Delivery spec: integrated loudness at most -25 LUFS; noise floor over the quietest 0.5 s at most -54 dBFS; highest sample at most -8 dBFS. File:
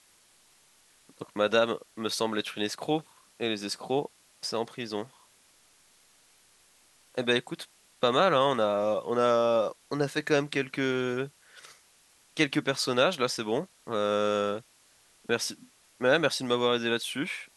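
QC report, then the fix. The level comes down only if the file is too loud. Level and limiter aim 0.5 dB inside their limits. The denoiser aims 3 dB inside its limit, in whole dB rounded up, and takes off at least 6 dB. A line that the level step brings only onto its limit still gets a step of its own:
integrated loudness -28.5 LUFS: pass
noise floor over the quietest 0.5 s -62 dBFS: pass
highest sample -9.5 dBFS: pass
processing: none needed

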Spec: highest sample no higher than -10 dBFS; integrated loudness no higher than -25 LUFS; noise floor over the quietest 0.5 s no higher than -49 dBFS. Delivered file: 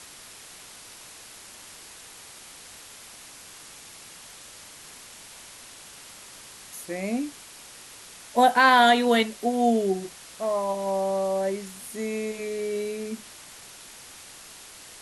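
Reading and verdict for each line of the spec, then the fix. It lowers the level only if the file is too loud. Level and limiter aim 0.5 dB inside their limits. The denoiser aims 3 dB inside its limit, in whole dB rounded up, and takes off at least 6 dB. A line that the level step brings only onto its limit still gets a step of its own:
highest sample -6.5 dBFS: fail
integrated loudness -24.5 LUFS: fail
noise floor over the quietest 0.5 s -46 dBFS: fail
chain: noise reduction 6 dB, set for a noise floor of -46 dBFS; trim -1 dB; peak limiter -10.5 dBFS

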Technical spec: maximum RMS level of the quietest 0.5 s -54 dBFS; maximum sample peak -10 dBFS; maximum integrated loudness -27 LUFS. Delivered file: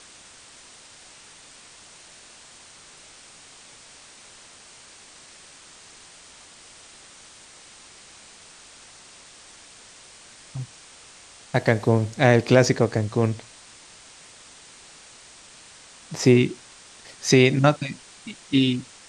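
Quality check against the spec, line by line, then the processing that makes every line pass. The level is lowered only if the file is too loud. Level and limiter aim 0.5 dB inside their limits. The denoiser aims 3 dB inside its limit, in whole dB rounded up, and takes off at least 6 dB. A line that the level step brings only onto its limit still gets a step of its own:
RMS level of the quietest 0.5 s -48 dBFS: fail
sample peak -3.0 dBFS: fail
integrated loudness -21.0 LUFS: fail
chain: trim -6.5 dB; peak limiter -10.5 dBFS

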